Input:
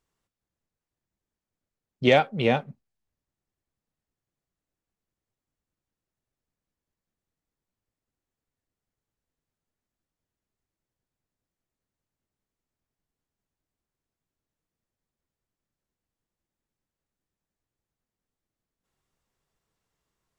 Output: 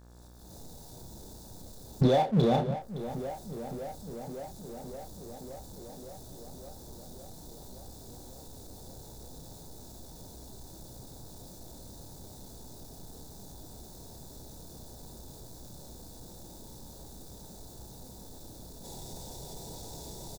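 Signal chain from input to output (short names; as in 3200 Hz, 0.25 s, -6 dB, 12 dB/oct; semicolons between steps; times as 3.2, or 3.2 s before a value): recorder AGC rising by 54 dB/s; on a send: tape echo 0.564 s, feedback 78%, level -20 dB, low-pass 1800 Hz; on the sum: limiter -12.5 dBFS, peak gain reduction 9 dB; brick-wall FIR band-stop 980–3400 Hz; doubler 31 ms -6.5 dB; buzz 60 Hz, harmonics 29, -66 dBFS -6 dB/oct; power-law curve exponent 0.7; gain -3.5 dB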